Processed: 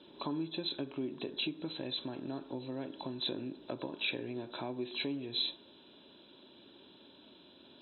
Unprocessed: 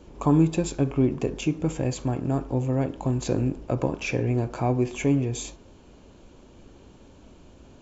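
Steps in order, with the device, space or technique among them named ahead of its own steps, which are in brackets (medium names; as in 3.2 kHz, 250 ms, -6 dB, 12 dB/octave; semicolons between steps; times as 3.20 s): hearing aid with frequency lowering (knee-point frequency compression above 3.3 kHz 4:1; compression 3:1, threshold -29 dBFS, peak gain reduction 11 dB; cabinet simulation 360–5600 Hz, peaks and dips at 480 Hz -10 dB, 750 Hz -10 dB, 1.2 kHz -9 dB, 2.1 kHz -8 dB, 3.4 kHz +5 dB)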